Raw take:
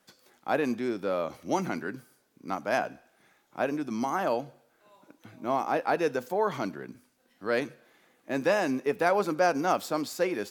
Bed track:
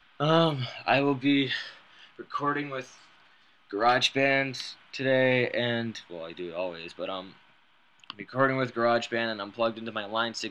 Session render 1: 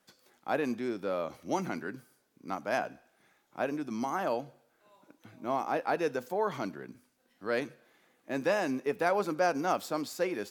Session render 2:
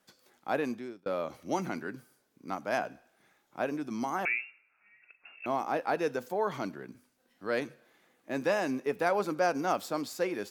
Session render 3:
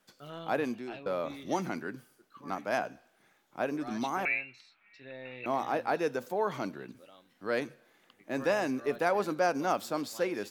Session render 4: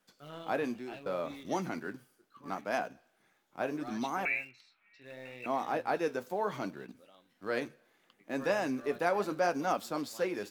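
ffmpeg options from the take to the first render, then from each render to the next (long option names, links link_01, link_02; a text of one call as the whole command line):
ffmpeg -i in.wav -af "volume=-3.5dB" out.wav
ffmpeg -i in.wav -filter_complex "[0:a]asettb=1/sr,asplit=3[link_01][link_02][link_03];[link_01]atrim=end=4.254[link_04];[link_02]atrim=start=4.25:end=5.46,asetpts=PTS-STARTPTS,afade=type=in:duration=0.004:curve=qsin,afade=type=out:start_time=1.206:duration=0.004:curve=qsin,lowpass=frequency=2500:width_type=q:width=0.5098,lowpass=frequency=2500:width_type=q:width=0.6013,lowpass=frequency=2500:width_type=q:width=0.9,lowpass=frequency=2500:width_type=q:width=2.563,afreqshift=-2900[link_05];[link_03]atrim=start=5.456[link_06];[link_04][link_05]acrossfade=duration=0.004:curve1=hsin:curve2=qsin[link_07];[link_07][link_06]acrossfade=duration=0.004:curve1=qsin:curve2=hsin,asplit=2[link_08][link_09];[link_08]atrim=end=1.06,asetpts=PTS-STARTPTS,afade=type=out:start_time=0.61:duration=0.45[link_10];[link_09]atrim=start=1.06,asetpts=PTS-STARTPTS,afade=type=in:duration=0.004:curve=hsin[link_11];[link_10][link_11]concat=n=2:v=0:a=1" out.wav
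ffmpeg -i in.wav -i bed.wav -filter_complex "[1:a]volume=-22dB[link_01];[0:a][link_01]amix=inputs=2:normalize=0" out.wav
ffmpeg -i in.wav -filter_complex "[0:a]flanger=delay=4:depth=7.4:regen=-65:speed=0.72:shape=sinusoidal,asplit=2[link_01][link_02];[link_02]aeval=exprs='val(0)*gte(abs(val(0)),0.00473)':channel_layout=same,volume=-10.5dB[link_03];[link_01][link_03]amix=inputs=2:normalize=0" out.wav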